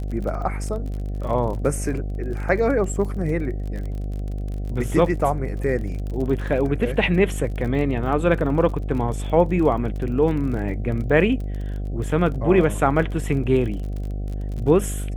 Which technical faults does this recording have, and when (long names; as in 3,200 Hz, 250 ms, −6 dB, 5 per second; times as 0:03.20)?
mains buzz 50 Hz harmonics 15 −27 dBFS
surface crackle 36 per second −30 dBFS